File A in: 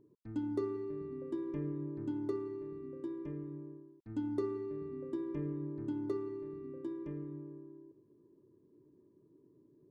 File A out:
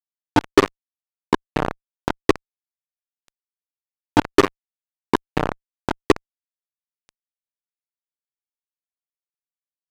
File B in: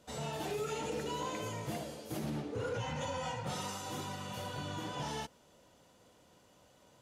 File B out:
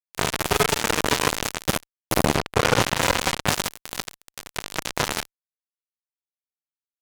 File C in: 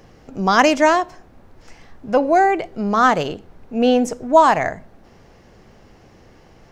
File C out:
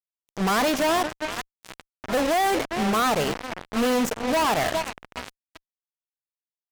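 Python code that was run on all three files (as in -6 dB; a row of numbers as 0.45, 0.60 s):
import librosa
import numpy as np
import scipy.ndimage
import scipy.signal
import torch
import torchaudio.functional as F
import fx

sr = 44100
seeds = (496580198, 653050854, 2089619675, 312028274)

y = fx.echo_alternate(x, sr, ms=399, hz=920.0, feedback_pct=67, wet_db=-13.5)
y = fx.power_curve(y, sr, exponent=1.4)
y = fx.fuzz(y, sr, gain_db=41.0, gate_db=-34.0)
y = y * 10.0 ** (-26 / 20.0) / np.sqrt(np.mean(np.square(y)))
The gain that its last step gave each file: +10.5, +7.0, -6.5 dB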